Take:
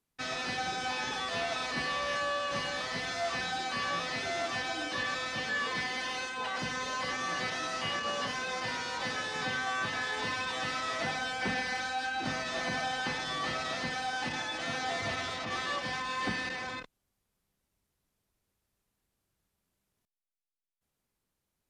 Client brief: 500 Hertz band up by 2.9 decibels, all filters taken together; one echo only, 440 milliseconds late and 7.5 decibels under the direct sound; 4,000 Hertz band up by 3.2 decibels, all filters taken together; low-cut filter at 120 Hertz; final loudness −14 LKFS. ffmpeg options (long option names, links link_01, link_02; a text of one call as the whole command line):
ffmpeg -i in.wav -af "highpass=120,equalizer=frequency=500:width_type=o:gain=3.5,equalizer=frequency=4000:width_type=o:gain=4,aecho=1:1:440:0.422,volume=17dB" out.wav